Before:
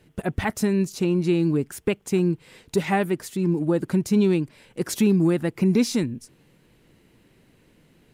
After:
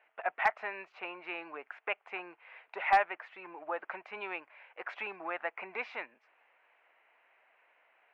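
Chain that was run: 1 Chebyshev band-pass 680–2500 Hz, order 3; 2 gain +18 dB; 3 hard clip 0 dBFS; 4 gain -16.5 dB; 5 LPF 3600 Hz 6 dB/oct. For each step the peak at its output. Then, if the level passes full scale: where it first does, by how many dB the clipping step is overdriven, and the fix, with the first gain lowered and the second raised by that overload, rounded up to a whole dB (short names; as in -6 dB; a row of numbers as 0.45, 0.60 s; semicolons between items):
-12.0, +6.0, 0.0, -16.5, -16.5 dBFS; step 2, 6.0 dB; step 2 +12 dB, step 4 -10.5 dB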